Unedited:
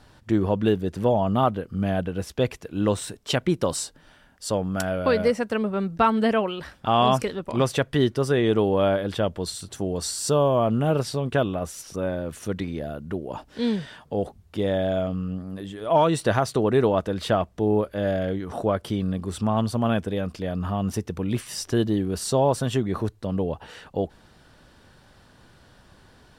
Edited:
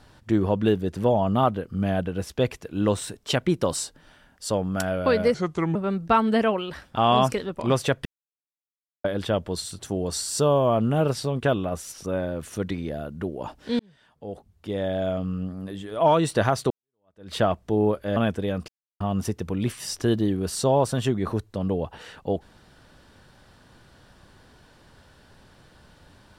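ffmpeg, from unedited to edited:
-filter_complex "[0:a]asplit=10[s0][s1][s2][s3][s4][s5][s6][s7][s8][s9];[s0]atrim=end=5.344[s10];[s1]atrim=start=5.34:end=5.65,asetpts=PTS-STARTPTS,asetrate=33075,aresample=44100[s11];[s2]atrim=start=5.646:end=7.95,asetpts=PTS-STARTPTS,afade=t=out:st=2.3:d=0.004:c=hsin[s12];[s3]atrim=start=7.95:end=8.94,asetpts=PTS-STARTPTS,volume=0[s13];[s4]atrim=start=8.94:end=13.69,asetpts=PTS-STARTPTS,afade=t=in:d=0.004:c=hsin,afade=t=out:st=4.746:d=0.004:c=hsin[s14];[s5]atrim=start=13.69:end=16.6,asetpts=PTS-STARTPTS,afade=t=in:d=1.53,afade=t=out:st=2.906:d=0.004:c=hsin[s15];[s6]atrim=start=16.6:end=18.062,asetpts=PTS-STARTPTS,afade=t=in:d=0.64:c=exp[s16];[s7]atrim=start=19.848:end=20.37,asetpts=PTS-STARTPTS,afade=t=out:st=0.518:d=0.004:c=hsin[s17];[s8]atrim=start=20.37:end=20.69,asetpts=PTS-STARTPTS,volume=0[s18];[s9]atrim=start=20.69,asetpts=PTS-STARTPTS,afade=t=in:d=0.004:c=hsin[s19];[s10][s11]acrossfade=d=0.004:c1=hsin:c2=hsin[s20];[s12][s13][s14][s15][s16]concat=n=5:v=0:a=1[s21];[s20][s21]acrossfade=d=0.004:c1=hsin:c2=hsin[s22];[s17][s18][s19]concat=n=3:v=0:a=1[s23];[s22][s23]acrossfade=d=0.004:c1=hsin:c2=hsin"

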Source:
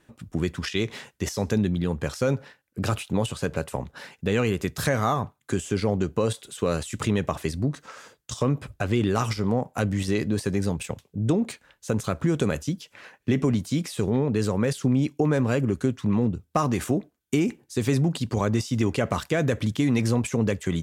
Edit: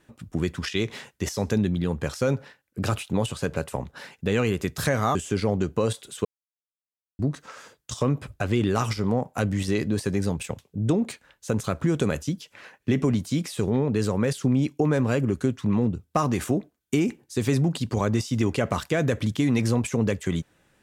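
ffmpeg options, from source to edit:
-filter_complex "[0:a]asplit=4[s0][s1][s2][s3];[s0]atrim=end=5.152[s4];[s1]atrim=start=5.548:end=6.65,asetpts=PTS-STARTPTS,afade=t=out:st=1.098:d=0.004:c=hsin[s5];[s2]atrim=start=6.65:end=7.59,asetpts=PTS-STARTPTS,volume=0[s6];[s3]atrim=start=7.59,asetpts=PTS-STARTPTS,afade=t=in:d=0.004:c=hsin[s7];[s5][s6][s7]concat=n=3:v=0:a=1[s8];[s4][s8]acrossfade=d=0.004:c1=hsin:c2=hsin"

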